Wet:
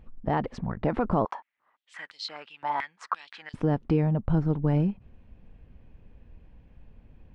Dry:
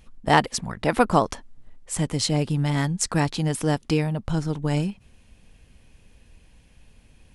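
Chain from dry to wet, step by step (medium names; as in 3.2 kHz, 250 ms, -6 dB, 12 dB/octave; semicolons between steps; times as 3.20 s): treble shelf 2.8 kHz -12 dB; peak limiter -14.5 dBFS, peak gain reduction 9.5 dB; tape spacing loss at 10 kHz 30 dB; 1.25–3.54 s: step-sequenced high-pass 5.8 Hz 900–4200 Hz; trim +2 dB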